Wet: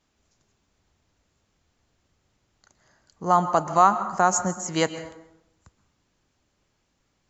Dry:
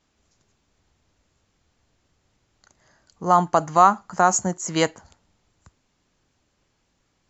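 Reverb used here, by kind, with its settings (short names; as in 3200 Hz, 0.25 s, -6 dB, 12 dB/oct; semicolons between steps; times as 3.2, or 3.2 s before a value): plate-style reverb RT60 0.85 s, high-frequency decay 0.6×, pre-delay 0.11 s, DRR 11.5 dB; gain -2.5 dB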